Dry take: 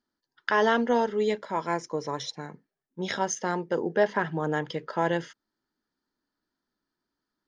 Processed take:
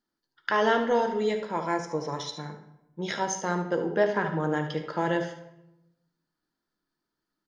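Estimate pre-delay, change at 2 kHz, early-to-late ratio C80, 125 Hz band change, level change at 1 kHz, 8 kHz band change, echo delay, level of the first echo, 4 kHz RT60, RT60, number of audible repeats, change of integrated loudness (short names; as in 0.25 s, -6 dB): 6 ms, -0.5 dB, 11.0 dB, +2.0 dB, -0.5 dB, n/a, 73 ms, -10.0 dB, 0.60 s, 0.90 s, 1, 0.0 dB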